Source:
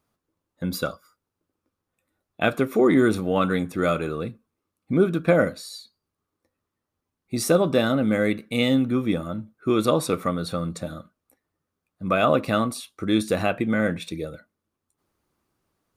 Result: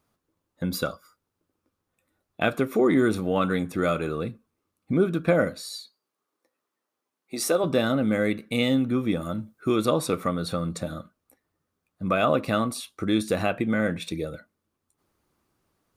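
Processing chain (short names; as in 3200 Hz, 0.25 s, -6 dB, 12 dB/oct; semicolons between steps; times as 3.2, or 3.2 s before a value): in parallel at +1 dB: compressor, threshold -29 dBFS, peak gain reduction 15 dB; 5.73–7.64 on the sum: HPF 350 Hz 12 dB/oct; 9.21–9.76 high shelf 4200 Hz +8 dB; gain -4.5 dB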